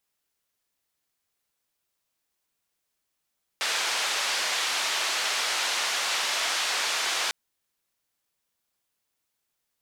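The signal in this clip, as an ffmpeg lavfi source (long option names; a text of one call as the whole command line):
ffmpeg -f lavfi -i "anoisesrc=color=white:duration=3.7:sample_rate=44100:seed=1,highpass=frequency=690,lowpass=frequency=5000,volume=-15.9dB" out.wav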